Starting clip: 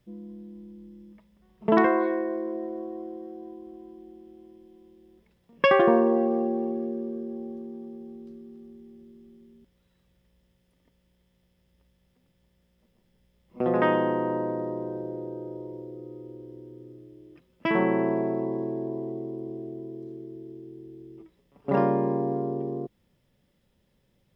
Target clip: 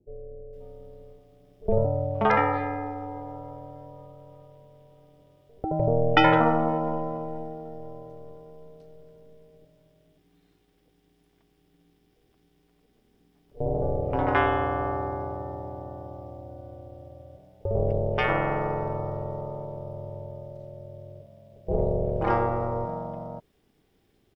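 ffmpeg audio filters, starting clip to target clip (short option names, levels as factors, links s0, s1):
-filter_complex "[0:a]acrossover=split=410[s0][s1];[s1]adelay=530[s2];[s0][s2]amix=inputs=2:normalize=0,aeval=exprs='val(0)*sin(2*PI*230*n/s)':c=same,volume=1.88"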